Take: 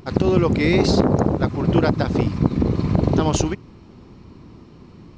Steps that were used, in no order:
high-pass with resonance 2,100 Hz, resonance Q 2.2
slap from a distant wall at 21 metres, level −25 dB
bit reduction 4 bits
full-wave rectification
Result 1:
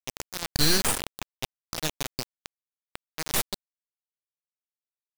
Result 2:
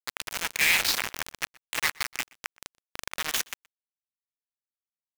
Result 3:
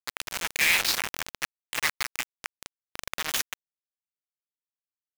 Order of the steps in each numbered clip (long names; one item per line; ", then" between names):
high-pass with resonance, then full-wave rectification, then slap from a distant wall, then bit reduction
full-wave rectification, then high-pass with resonance, then bit reduction, then slap from a distant wall
slap from a distant wall, then full-wave rectification, then high-pass with resonance, then bit reduction